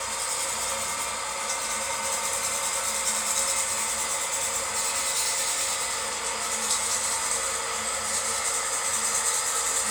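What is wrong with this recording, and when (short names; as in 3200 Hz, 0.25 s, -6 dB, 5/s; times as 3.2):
3.73–6.1 clipped -22 dBFS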